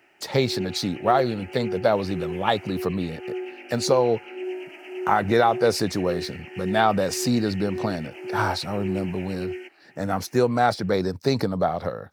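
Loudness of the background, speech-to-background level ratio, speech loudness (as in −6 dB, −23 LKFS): −34.5 LKFS, 10.0 dB, −24.5 LKFS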